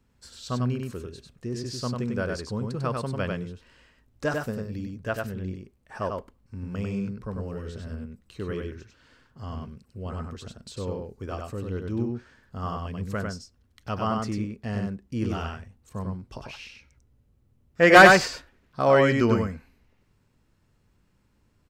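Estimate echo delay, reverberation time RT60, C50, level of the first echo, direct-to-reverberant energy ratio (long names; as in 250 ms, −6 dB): 97 ms, no reverb audible, no reverb audible, −3.5 dB, no reverb audible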